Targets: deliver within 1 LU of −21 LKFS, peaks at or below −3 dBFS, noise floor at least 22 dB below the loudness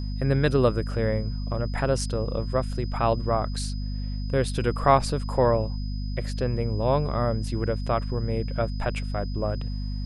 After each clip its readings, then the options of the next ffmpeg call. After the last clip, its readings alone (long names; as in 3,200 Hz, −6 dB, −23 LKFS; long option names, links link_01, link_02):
mains hum 50 Hz; hum harmonics up to 250 Hz; level of the hum −27 dBFS; interfering tone 5,000 Hz; level of the tone −46 dBFS; integrated loudness −26.5 LKFS; sample peak −5.0 dBFS; target loudness −21.0 LKFS
→ -af "bandreject=frequency=50:width_type=h:width=6,bandreject=frequency=100:width_type=h:width=6,bandreject=frequency=150:width_type=h:width=6,bandreject=frequency=200:width_type=h:width=6,bandreject=frequency=250:width_type=h:width=6"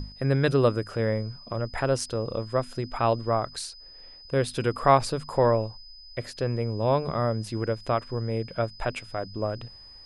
mains hum none found; interfering tone 5,000 Hz; level of the tone −46 dBFS
→ -af "bandreject=frequency=5000:width=30"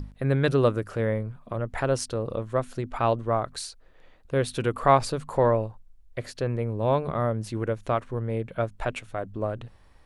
interfering tone none found; integrated loudness −27.0 LKFS; sample peak −5.5 dBFS; target loudness −21.0 LKFS
→ -af "volume=6dB,alimiter=limit=-3dB:level=0:latency=1"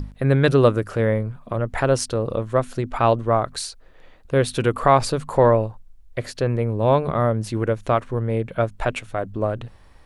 integrated loudness −21.5 LKFS; sample peak −3.0 dBFS; background noise floor −48 dBFS